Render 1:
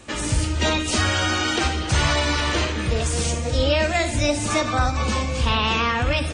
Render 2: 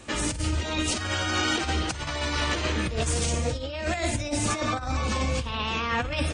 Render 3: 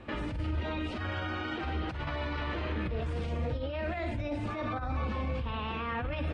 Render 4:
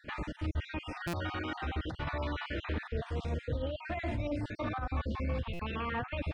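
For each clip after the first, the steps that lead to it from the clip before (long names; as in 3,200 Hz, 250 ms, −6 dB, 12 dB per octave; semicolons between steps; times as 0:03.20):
compressor whose output falls as the input rises −23 dBFS, ratio −0.5; level −3.5 dB
brickwall limiter −23.5 dBFS, peak gain reduction 10 dB; high-frequency loss of the air 420 metres
time-frequency cells dropped at random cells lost 36%; buffer that repeats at 0:01.07/0:05.53, samples 256, times 10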